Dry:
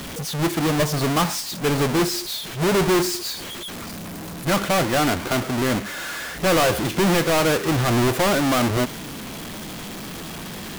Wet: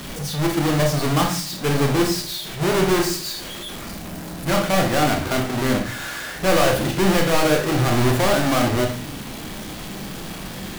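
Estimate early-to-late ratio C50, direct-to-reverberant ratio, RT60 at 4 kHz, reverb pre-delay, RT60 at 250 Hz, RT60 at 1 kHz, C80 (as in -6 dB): 7.5 dB, 2.5 dB, 0.30 s, 26 ms, 0.55 s, 0.40 s, 13.0 dB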